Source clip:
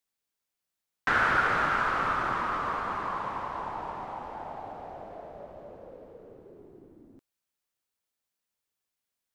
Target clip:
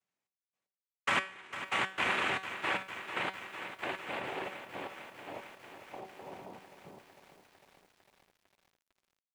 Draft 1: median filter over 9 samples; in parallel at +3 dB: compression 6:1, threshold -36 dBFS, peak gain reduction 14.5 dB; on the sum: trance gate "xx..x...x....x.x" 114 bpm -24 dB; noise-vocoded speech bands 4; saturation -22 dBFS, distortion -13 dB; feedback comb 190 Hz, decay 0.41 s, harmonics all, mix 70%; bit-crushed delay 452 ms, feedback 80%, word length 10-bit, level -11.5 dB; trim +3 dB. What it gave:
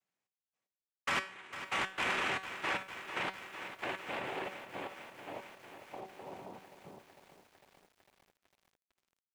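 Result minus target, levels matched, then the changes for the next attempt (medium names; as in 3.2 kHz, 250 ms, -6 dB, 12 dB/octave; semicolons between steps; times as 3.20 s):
saturation: distortion +15 dB
change: saturation -11.5 dBFS, distortion -27 dB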